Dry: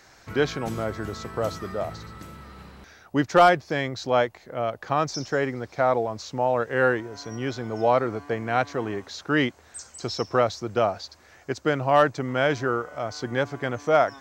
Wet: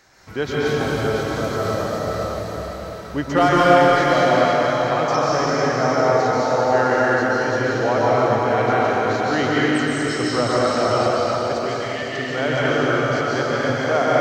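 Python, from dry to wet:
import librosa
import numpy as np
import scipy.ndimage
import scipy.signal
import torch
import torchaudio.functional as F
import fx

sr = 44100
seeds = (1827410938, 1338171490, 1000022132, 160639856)

y = fx.brickwall_bandpass(x, sr, low_hz=1700.0, high_hz=5400.0, at=(11.59, 12.12))
y = y + 10.0 ** (-7.0 / 20.0) * np.pad(y, (int(504 * sr / 1000.0), 0))[:len(y)]
y = fx.rev_plate(y, sr, seeds[0], rt60_s=4.1, hf_ratio=0.95, predelay_ms=115, drr_db=-8.0)
y = y * 10.0 ** (-2.0 / 20.0)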